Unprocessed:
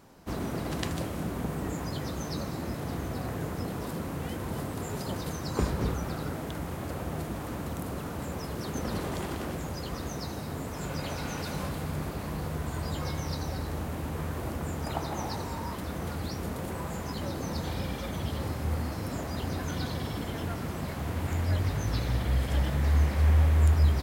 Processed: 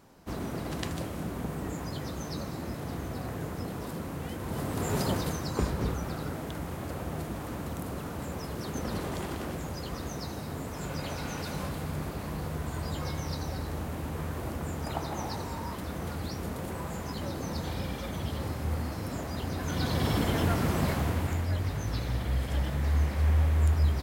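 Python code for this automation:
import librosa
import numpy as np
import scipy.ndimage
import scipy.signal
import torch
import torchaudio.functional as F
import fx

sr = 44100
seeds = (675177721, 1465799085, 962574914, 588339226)

y = fx.gain(x, sr, db=fx.line((4.39, -2.0), (5.0, 6.5), (5.59, -1.0), (19.56, -1.0), (20.1, 7.0), (20.9, 7.0), (21.48, -2.5)))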